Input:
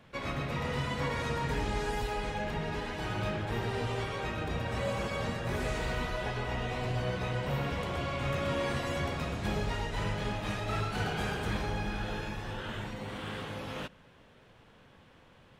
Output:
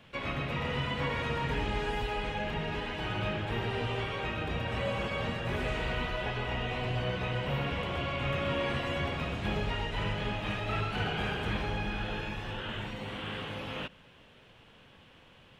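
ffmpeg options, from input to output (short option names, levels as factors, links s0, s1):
-filter_complex "[0:a]equalizer=f=2900:t=o:w=0.69:g=8,acrossover=split=3300[s0][s1];[s1]acompressor=threshold=0.00224:ratio=4:attack=1:release=60[s2];[s0][s2]amix=inputs=2:normalize=0"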